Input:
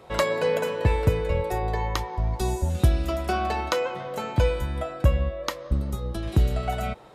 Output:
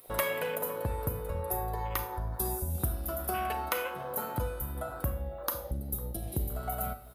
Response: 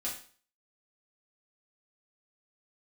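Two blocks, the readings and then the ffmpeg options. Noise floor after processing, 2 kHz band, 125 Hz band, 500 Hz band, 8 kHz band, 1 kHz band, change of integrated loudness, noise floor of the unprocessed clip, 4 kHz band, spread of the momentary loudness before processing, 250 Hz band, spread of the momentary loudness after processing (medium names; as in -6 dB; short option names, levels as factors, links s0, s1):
-43 dBFS, -6.0 dB, -11.0 dB, -9.5 dB, +0.5 dB, -6.0 dB, -8.0 dB, -39 dBFS, -9.5 dB, 6 LU, -10.0 dB, 4 LU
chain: -filter_complex "[0:a]afwtdn=0.0251,asplit=2[s0][s1];[s1]adelay=501.5,volume=0.0794,highshelf=f=4000:g=-11.3[s2];[s0][s2]amix=inputs=2:normalize=0,acompressor=threshold=0.00891:ratio=2,crystalizer=i=6.5:c=0,asplit=2[s3][s4];[1:a]atrim=start_sample=2205,adelay=35[s5];[s4][s5]afir=irnorm=-1:irlink=0,volume=0.316[s6];[s3][s6]amix=inputs=2:normalize=0,aexciter=amount=7.5:drive=6.9:freq=9900"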